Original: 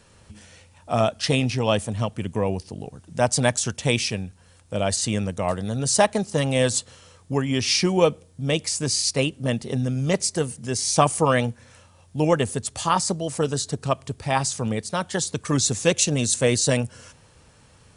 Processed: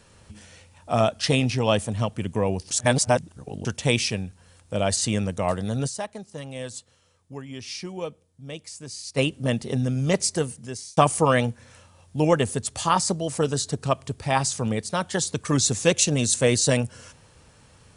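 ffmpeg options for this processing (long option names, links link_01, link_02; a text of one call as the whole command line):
ffmpeg -i in.wav -filter_complex "[0:a]asplit=6[link_01][link_02][link_03][link_04][link_05][link_06];[link_01]atrim=end=2.712[link_07];[link_02]atrim=start=2.708:end=3.652,asetpts=PTS-STARTPTS,areverse[link_08];[link_03]atrim=start=3.648:end=6.04,asetpts=PTS-STARTPTS,afade=type=out:start_time=2.212:duration=0.18:curve=exp:silence=0.199526[link_09];[link_04]atrim=start=6.04:end=9,asetpts=PTS-STARTPTS,volume=-14dB[link_10];[link_05]atrim=start=9:end=10.97,asetpts=PTS-STARTPTS,afade=type=in:duration=0.18:curve=exp:silence=0.199526,afade=type=out:start_time=1.35:duration=0.62[link_11];[link_06]atrim=start=10.97,asetpts=PTS-STARTPTS,afade=type=in:duration=0.004:curve=hsin[link_12];[link_07][link_08]acrossfade=duration=0.004:curve1=hsin:curve2=hsin[link_13];[link_09][link_10][link_11][link_12]concat=n=4:v=0:a=1[link_14];[link_13][link_14]acrossfade=duration=0.004:curve1=hsin:curve2=hsin" out.wav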